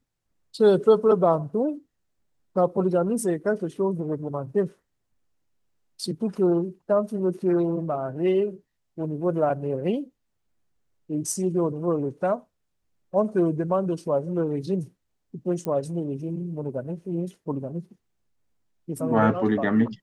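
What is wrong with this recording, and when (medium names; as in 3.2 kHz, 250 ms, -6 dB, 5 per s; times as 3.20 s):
15.65 s: pop -16 dBFS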